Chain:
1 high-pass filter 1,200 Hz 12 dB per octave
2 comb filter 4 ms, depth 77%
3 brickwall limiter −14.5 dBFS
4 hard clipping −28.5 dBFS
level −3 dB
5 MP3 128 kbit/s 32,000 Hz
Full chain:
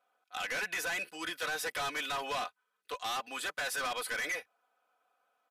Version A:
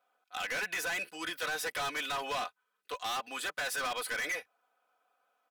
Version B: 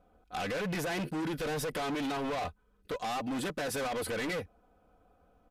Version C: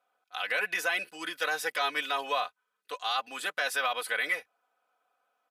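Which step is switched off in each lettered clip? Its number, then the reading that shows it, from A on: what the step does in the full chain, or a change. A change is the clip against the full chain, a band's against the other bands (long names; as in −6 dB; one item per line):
5, change in crest factor −2.5 dB
1, 125 Hz band +18.5 dB
4, distortion level −6 dB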